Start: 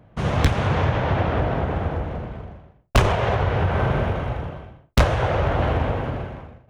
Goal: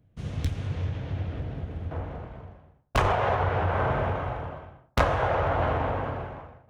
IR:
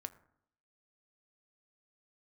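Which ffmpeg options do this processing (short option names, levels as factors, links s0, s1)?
-filter_complex "[0:a]asetnsamples=n=441:p=0,asendcmd='1.91 equalizer g 2.5;2.97 equalizer g 9',equalizer=f=980:t=o:w=2.4:g=-14[s0];[1:a]atrim=start_sample=2205,afade=t=out:st=0.35:d=0.01,atrim=end_sample=15876[s1];[s0][s1]afir=irnorm=-1:irlink=0,volume=0.501"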